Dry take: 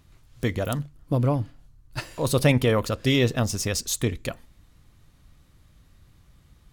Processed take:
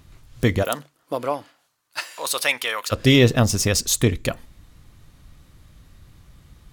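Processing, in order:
0:00.62–0:02.91: high-pass filter 420 Hz → 1,500 Hz 12 dB per octave
level +6.5 dB

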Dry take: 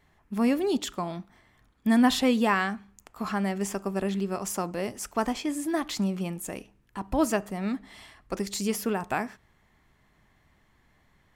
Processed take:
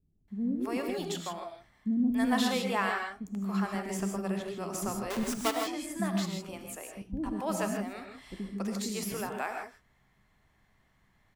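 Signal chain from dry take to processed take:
0:04.82–0:05.24: each half-wave held at its own peak
multiband delay without the direct sound lows, highs 280 ms, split 350 Hz
reverb whose tail is shaped and stops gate 180 ms rising, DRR 3 dB
level −5.5 dB

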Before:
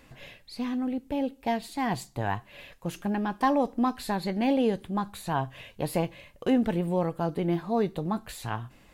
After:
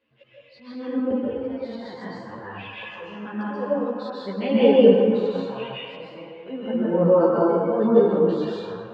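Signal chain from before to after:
camcorder AGC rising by 21 dB per second
noise reduction from a noise print of the clip's start 20 dB
mains-hum notches 60/120/180 Hz
volume swells 572 ms
loudspeaker in its box 130–4,100 Hz, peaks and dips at 150 Hz −6 dB, 490 Hz +9 dB, 780 Hz −6 dB, 2,900 Hz +7 dB
on a send: delay with a band-pass on its return 118 ms, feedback 80%, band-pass 1,400 Hz, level −12 dB
on the sum: dense smooth reverb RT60 1.8 s, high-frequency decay 0.45×, pre-delay 120 ms, DRR −7.5 dB
string-ensemble chorus
level +4.5 dB

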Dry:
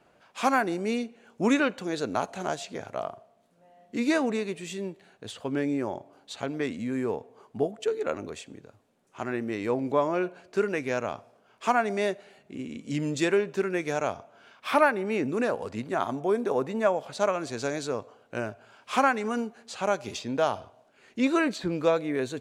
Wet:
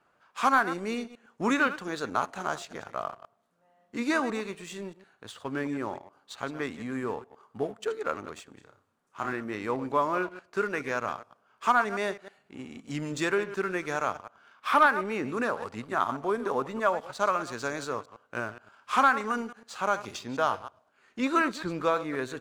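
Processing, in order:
delay that plays each chunk backwards 105 ms, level −13 dB
drawn EQ curve 680 Hz 0 dB, 1,200 Hz +11 dB, 2,300 Hz +2 dB
leveller curve on the samples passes 1
0:08.54–0:09.33: flutter between parallel walls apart 5.4 metres, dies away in 0.29 s
level −8 dB

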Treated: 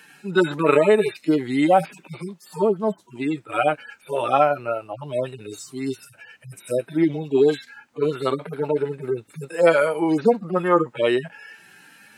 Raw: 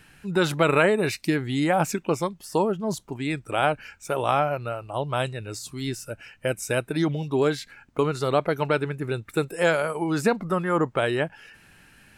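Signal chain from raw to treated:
harmonic-percussive split with one part muted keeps harmonic
high-pass filter 280 Hz 12 dB per octave
level +8 dB

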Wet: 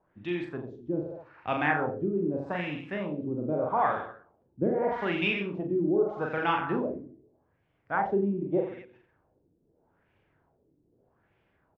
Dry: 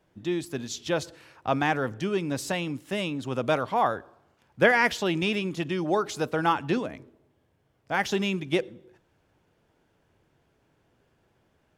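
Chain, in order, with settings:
reverse bouncing-ball delay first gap 40 ms, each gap 1.1×, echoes 5
auto-filter low-pass sine 0.81 Hz 310–2,600 Hz
level −6 dB

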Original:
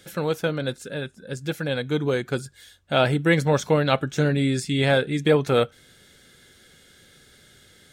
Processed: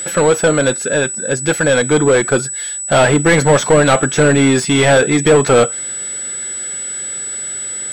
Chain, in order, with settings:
mid-hump overdrive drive 25 dB, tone 1,500 Hz, clips at −6 dBFS
steady tone 7,900 Hz −26 dBFS
level +4.5 dB

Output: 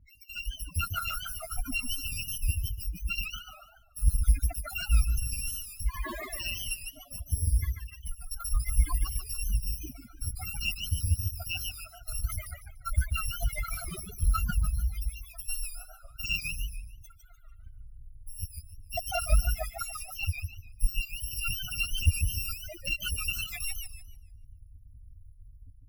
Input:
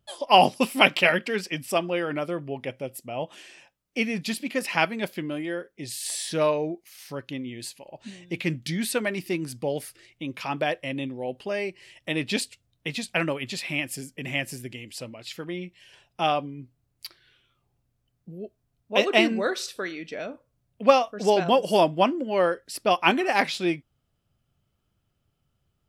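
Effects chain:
samples in bit-reversed order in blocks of 256 samples
spectral peaks only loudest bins 16
flat-topped bell 5,600 Hz −14.5 dB
downward compressor 12 to 1, threshold −31 dBFS, peak gain reduction 17 dB
brickwall limiter −31 dBFS, peak gain reduction 9 dB
automatic gain control gain up to 9.5 dB
harmonic generator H 3 −17 dB, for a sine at −21.5 dBFS
RIAA equalisation playback
feedback echo with a swinging delay time 147 ms, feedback 32%, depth 197 cents, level −6 dB
level +8.5 dB

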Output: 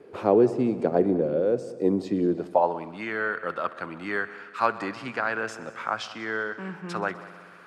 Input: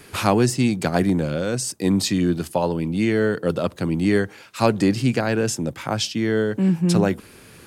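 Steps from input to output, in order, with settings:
echo machine with several playback heads 63 ms, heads all three, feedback 61%, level −21 dB
band-pass filter sweep 450 Hz → 1,300 Hz, 0:02.25–0:02.99
level +4.5 dB

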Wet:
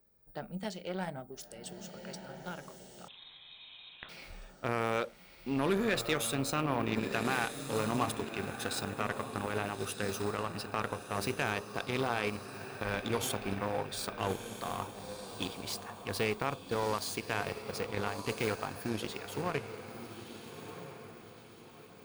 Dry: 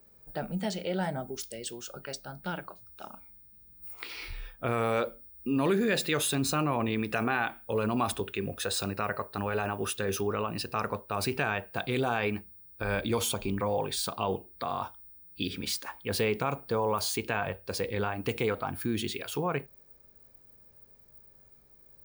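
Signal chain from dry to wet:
feedback delay with all-pass diffusion 1,314 ms, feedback 45%, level −6 dB
harmonic generator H 7 −22 dB, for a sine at −12.5 dBFS
0:03.08–0:04.09: voice inversion scrambler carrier 3,900 Hz
level −2.5 dB

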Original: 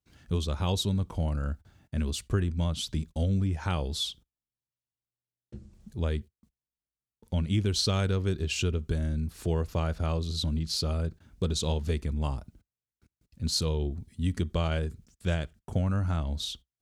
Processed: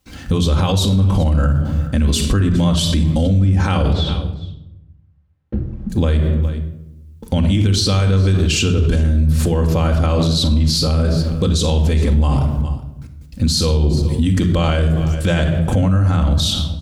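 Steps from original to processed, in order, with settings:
0:03.93–0:05.90: low-pass filter 1,600 Hz 12 dB per octave
single-tap delay 410 ms −22.5 dB
rectangular room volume 2,900 cubic metres, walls furnished, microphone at 2.1 metres
boost into a limiter +29 dB
level −7.5 dB

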